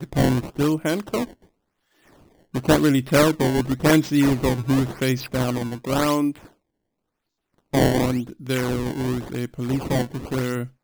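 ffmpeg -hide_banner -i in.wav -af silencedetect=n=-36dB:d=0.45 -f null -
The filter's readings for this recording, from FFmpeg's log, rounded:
silence_start: 1.33
silence_end: 2.54 | silence_duration: 1.21
silence_start: 6.46
silence_end: 7.73 | silence_duration: 1.28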